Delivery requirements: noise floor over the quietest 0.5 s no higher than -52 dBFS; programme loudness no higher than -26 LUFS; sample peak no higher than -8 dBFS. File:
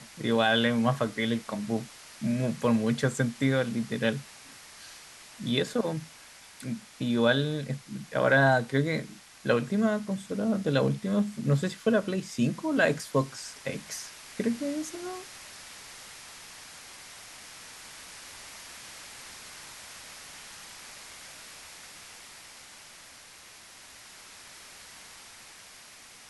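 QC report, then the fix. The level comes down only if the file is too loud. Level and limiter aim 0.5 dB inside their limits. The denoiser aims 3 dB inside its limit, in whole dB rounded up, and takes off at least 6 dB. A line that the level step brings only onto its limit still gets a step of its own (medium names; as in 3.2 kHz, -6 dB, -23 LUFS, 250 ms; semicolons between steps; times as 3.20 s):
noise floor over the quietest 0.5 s -51 dBFS: fail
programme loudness -28.5 LUFS: pass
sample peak -10.5 dBFS: pass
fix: noise reduction 6 dB, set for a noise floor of -51 dBFS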